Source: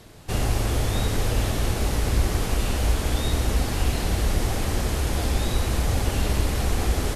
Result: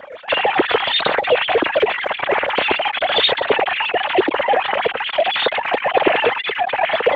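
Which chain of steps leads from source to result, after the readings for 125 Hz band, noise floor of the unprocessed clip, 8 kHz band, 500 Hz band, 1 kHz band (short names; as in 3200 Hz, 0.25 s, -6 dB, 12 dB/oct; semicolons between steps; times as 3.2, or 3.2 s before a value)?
-19.5 dB, -28 dBFS, under -30 dB, +13.5 dB, +15.0 dB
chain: sine-wave speech; dynamic EQ 1200 Hz, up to -4 dB, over -36 dBFS, Q 1.5; gain +6 dB; Speex 15 kbps 32000 Hz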